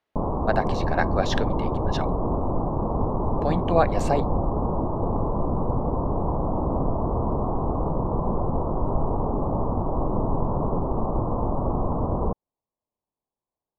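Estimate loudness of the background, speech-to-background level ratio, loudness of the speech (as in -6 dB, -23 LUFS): -26.5 LUFS, -1.0 dB, -27.5 LUFS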